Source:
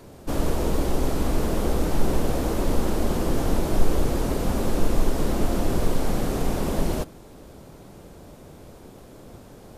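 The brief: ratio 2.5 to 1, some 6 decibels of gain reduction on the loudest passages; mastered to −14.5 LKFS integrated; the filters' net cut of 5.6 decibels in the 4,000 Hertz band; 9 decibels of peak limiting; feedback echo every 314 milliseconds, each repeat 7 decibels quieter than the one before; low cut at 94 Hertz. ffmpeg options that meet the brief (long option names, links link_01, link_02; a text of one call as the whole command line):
ffmpeg -i in.wav -af "highpass=94,equalizer=frequency=4000:width_type=o:gain=-7.5,acompressor=threshold=-32dB:ratio=2.5,alimiter=level_in=6dB:limit=-24dB:level=0:latency=1,volume=-6dB,aecho=1:1:314|628|942|1256|1570:0.447|0.201|0.0905|0.0407|0.0183,volume=24.5dB" out.wav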